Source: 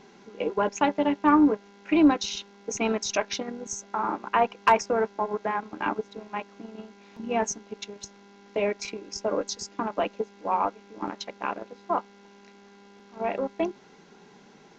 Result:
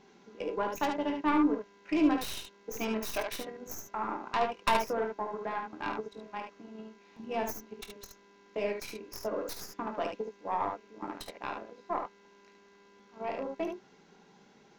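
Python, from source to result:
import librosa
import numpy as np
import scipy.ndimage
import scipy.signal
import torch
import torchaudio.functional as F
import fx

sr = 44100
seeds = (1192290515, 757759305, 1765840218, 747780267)

p1 = fx.tracing_dist(x, sr, depth_ms=0.19)
p2 = p1 + fx.room_early_taps(p1, sr, ms=(23, 51, 73), db=(-10.0, -12.0, -5.5), dry=0)
y = F.gain(torch.from_numpy(p2), -8.0).numpy()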